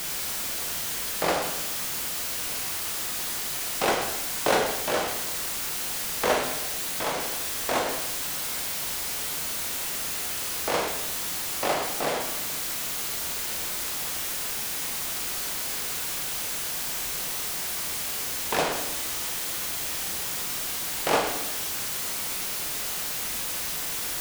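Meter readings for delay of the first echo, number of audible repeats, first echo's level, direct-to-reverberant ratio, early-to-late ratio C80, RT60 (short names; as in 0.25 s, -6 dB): none, none, none, 2.0 dB, 8.0 dB, 0.90 s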